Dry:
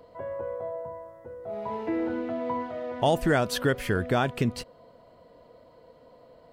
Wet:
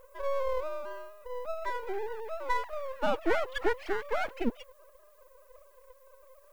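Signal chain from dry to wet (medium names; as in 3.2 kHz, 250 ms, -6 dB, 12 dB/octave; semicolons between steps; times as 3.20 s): formants replaced by sine waves; added noise violet -64 dBFS; half-wave rectifier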